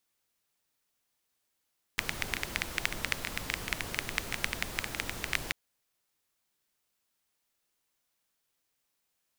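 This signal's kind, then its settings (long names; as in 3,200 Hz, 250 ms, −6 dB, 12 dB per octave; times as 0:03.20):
rain-like ticks over hiss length 3.54 s, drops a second 11, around 2,100 Hz, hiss −2.5 dB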